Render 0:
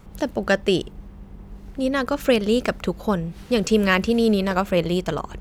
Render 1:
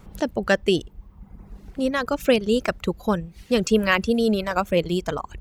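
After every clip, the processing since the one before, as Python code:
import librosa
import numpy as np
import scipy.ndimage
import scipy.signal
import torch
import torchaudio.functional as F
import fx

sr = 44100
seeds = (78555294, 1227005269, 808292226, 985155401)

y = fx.dereverb_blind(x, sr, rt60_s=1.0)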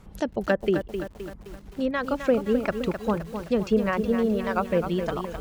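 y = fx.env_lowpass_down(x, sr, base_hz=1100.0, full_db=-15.0)
y = fx.echo_crushed(y, sr, ms=260, feedback_pct=55, bits=7, wet_db=-8)
y = y * librosa.db_to_amplitude(-3.0)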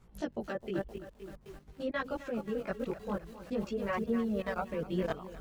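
y = fx.level_steps(x, sr, step_db=14)
y = fx.chorus_voices(y, sr, voices=2, hz=0.49, base_ms=17, depth_ms=4.4, mix_pct=55)
y = y * librosa.db_to_amplitude(-1.5)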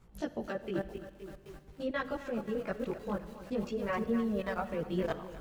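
y = fx.rev_schroeder(x, sr, rt60_s=1.7, comb_ms=31, drr_db=13.5)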